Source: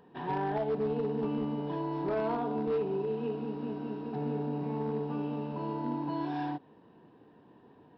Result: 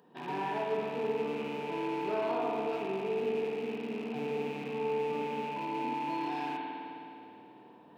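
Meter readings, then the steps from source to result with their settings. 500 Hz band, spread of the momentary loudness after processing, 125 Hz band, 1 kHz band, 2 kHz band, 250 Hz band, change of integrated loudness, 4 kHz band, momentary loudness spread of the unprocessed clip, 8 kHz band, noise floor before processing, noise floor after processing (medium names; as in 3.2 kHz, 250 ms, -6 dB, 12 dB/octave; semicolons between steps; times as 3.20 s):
+0.5 dB, 10 LU, -10.0 dB, +2.0 dB, +6.0 dB, -4.5 dB, -1.0 dB, +7.0 dB, 5 LU, no reading, -59 dBFS, -55 dBFS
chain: rattle on loud lows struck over -42 dBFS, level -36 dBFS; high-pass 170 Hz 12 dB/octave; tone controls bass 0 dB, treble +8 dB; reverse; upward compressor, threshold -51 dBFS; reverse; spring tank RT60 2.8 s, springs 52 ms, chirp 75 ms, DRR -2.5 dB; trim -4 dB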